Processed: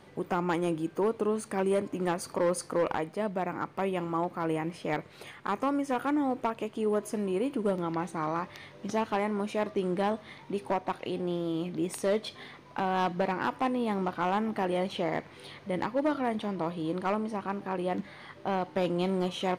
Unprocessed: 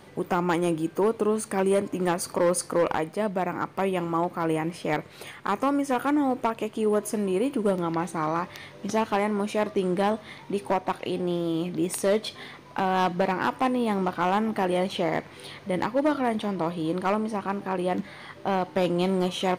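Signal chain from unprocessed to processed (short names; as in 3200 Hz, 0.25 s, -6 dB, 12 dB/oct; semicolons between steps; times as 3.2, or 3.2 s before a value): high shelf 8500 Hz -7.5 dB; gain -4.5 dB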